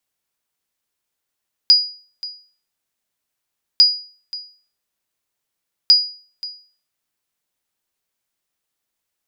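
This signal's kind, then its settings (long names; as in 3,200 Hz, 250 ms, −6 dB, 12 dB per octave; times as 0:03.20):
ping with an echo 4,900 Hz, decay 0.42 s, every 2.10 s, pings 3, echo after 0.53 s, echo −18.5 dB −3.5 dBFS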